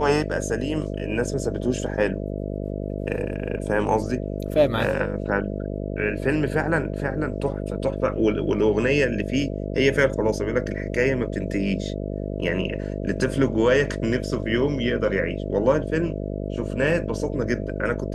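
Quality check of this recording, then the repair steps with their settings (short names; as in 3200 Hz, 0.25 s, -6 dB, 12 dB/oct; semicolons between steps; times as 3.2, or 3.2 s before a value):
buzz 50 Hz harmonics 13 -29 dBFS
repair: de-hum 50 Hz, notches 13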